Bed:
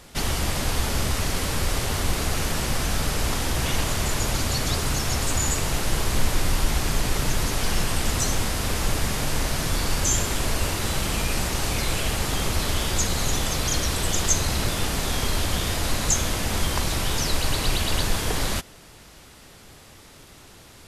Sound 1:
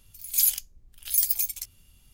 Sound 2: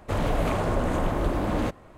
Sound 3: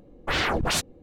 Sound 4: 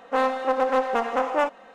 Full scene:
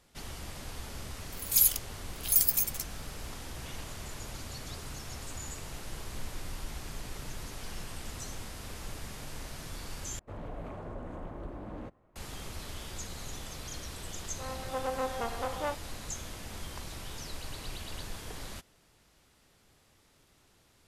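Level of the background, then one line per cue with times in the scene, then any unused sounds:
bed −17.5 dB
0:01.18: mix in 1 −1.5 dB
0:10.19: overwrite with 2 −16 dB + high-shelf EQ 2,500 Hz −12 dB
0:14.26: mix in 4 −11.5 dB + fade in at the beginning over 0.56 s
not used: 3

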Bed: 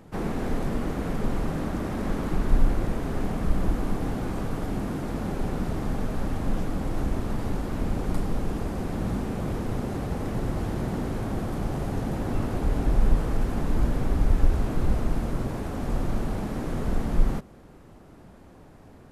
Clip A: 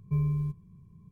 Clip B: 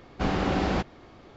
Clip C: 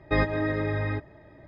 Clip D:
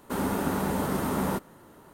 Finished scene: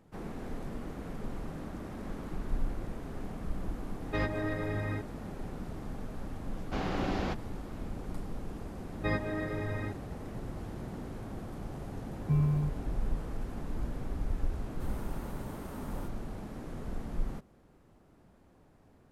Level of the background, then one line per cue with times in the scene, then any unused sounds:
bed −12 dB
0:04.02: mix in C −6 dB + soft clipping −18 dBFS
0:06.52: mix in B −7.5 dB
0:08.93: mix in C −8 dB
0:12.18: mix in A
0:14.70: mix in D −17.5 dB

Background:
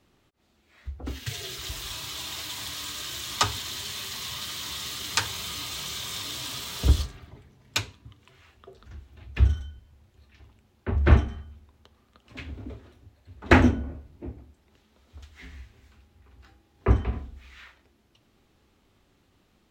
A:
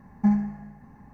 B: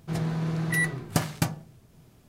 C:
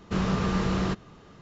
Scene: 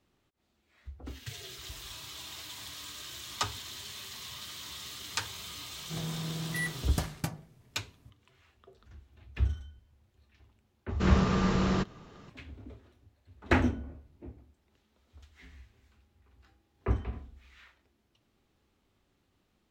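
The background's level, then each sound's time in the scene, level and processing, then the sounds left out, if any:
background −8.5 dB
0:05.82: mix in B −8.5 dB
0:10.89: mix in C −1 dB
not used: A

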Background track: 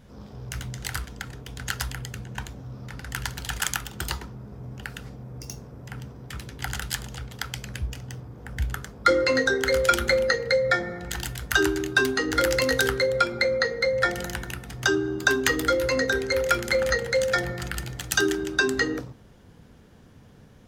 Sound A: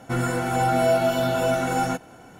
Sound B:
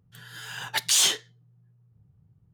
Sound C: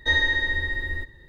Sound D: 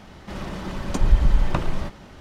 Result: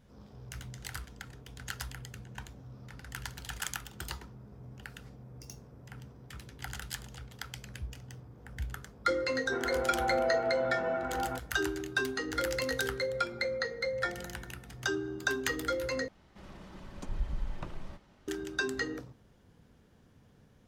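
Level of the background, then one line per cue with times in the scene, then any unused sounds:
background track −10 dB
0:09.42: mix in A −9 dB + Chebyshev band-pass filter 330–1,600 Hz
0:16.08: overwrite with D −17.5 dB
not used: B, C

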